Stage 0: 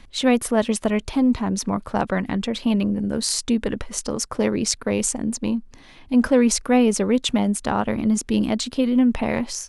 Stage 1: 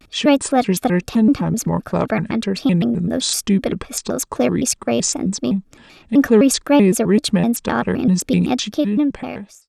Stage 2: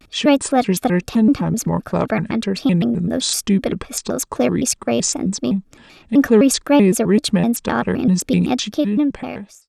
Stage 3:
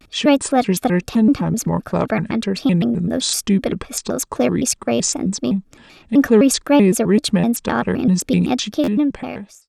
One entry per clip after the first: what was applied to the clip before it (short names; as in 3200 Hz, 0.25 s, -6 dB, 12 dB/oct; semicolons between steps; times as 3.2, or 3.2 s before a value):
ending faded out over 1.07 s; notch comb 870 Hz; shaped vibrato square 3.9 Hz, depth 250 cents; gain +4.5 dB
nothing audible
stuck buffer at 8.83, samples 512, times 3